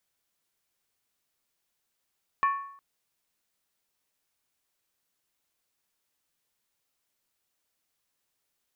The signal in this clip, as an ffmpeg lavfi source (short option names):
-f lavfi -i "aevalsrc='0.112*pow(10,-3*t/0.65)*sin(2*PI*1110*t)+0.0376*pow(10,-3*t/0.515)*sin(2*PI*1769.3*t)+0.0126*pow(10,-3*t/0.445)*sin(2*PI*2371*t)+0.00422*pow(10,-3*t/0.429)*sin(2*PI*2548.6*t)+0.00141*pow(10,-3*t/0.399)*sin(2*PI*2944.8*t)':d=0.36:s=44100"